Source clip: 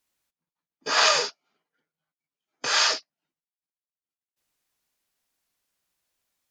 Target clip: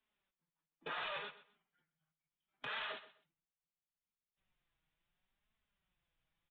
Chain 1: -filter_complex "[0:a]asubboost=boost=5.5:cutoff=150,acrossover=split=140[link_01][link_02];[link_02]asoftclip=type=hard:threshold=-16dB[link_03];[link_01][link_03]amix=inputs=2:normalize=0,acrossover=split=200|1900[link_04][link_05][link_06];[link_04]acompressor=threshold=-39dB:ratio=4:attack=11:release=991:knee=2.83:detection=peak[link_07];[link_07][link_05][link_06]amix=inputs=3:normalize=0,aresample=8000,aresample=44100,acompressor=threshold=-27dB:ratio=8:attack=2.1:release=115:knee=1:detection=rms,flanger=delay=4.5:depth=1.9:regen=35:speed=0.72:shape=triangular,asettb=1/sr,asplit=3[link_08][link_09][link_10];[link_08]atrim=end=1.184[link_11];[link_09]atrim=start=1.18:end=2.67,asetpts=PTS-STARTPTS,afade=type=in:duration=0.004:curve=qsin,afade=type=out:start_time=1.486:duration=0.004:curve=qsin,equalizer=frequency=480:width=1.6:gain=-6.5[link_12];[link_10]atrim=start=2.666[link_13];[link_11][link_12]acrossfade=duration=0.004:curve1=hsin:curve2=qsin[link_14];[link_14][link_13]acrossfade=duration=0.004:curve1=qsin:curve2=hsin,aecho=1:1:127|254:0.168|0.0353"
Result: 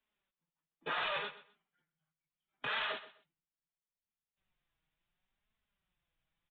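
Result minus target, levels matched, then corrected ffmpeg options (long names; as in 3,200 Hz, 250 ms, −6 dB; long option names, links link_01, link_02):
downward compressor: peak gain reduction −6 dB
-filter_complex "[0:a]asubboost=boost=5.5:cutoff=150,acrossover=split=140[link_01][link_02];[link_02]asoftclip=type=hard:threshold=-16dB[link_03];[link_01][link_03]amix=inputs=2:normalize=0,acrossover=split=200|1900[link_04][link_05][link_06];[link_04]acompressor=threshold=-39dB:ratio=4:attack=11:release=991:knee=2.83:detection=peak[link_07];[link_07][link_05][link_06]amix=inputs=3:normalize=0,aresample=8000,aresample=44100,acompressor=threshold=-34dB:ratio=8:attack=2.1:release=115:knee=1:detection=rms,flanger=delay=4.5:depth=1.9:regen=35:speed=0.72:shape=triangular,asettb=1/sr,asplit=3[link_08][link_09][link_10];[link_08]atrim=end=1.184[link_11];[link_09]atrim=start=1.18:end=2.67,asetpts=PTS-STARTPTS,afade=type=in:duration=0.004:curve=qsin,afade=type=out:start_time=1.486:duration=0.004:curve=qsin,equalizer=frequency=480:width=1.6:gain=-6.5[link_12];[link_10]atrim=start=2.666[link_13];[link_11][link_12]acrossfade=duration=0.004:curve1=hsin:curve2=qsin[link_14];[link_14][link_13]acrossfade=duration=0.004:curve1=qsin:curve2=hsin,aecho=1:1:127|254:0.168|0.0353"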